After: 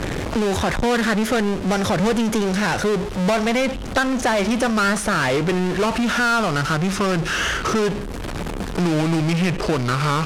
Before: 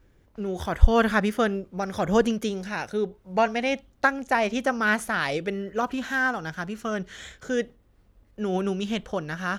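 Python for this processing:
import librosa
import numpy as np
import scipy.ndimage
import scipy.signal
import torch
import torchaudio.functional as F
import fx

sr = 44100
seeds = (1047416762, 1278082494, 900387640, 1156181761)

y = fx.speed_glide(x, sr, from_pct=107, to_pct=80)
y = fx.power_curve(y, sr, exponent=0.35)
y = scipy.signal.sosfilt(scipy.signal.butter(2, 10000.0, 'lowpass', fs=sr, output='sos'), y)
y = fx.band_squash(y, sr, depth_pct=70)
y = y * 10.0 ** (-8.0 / 20.0)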